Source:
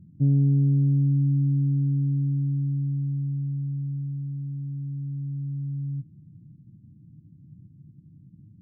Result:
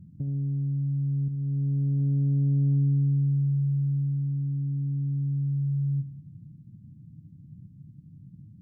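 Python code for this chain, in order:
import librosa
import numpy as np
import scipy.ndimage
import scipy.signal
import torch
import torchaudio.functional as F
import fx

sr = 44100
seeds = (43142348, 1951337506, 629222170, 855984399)

y = fx.peak_eq(x, sr, hz=380.0, db=-10.0, octaves=0.63)
y = fx.over_compress(y, sr, threshold_db=-26.0, ratio=-1.0)
y = fx.comb_fb(y, sr, f0_hz=70.0, decay_s=0.94, harmonics='all', damping=0.0, mix_pct=80, at=(1.28, 2.0))
y = fx.echo_feedback(y, sr, ms=72, feedback_pct=51, wet_db=-13.0)
y = fx.doppler_dist(y, sr, depth_ms=0.22)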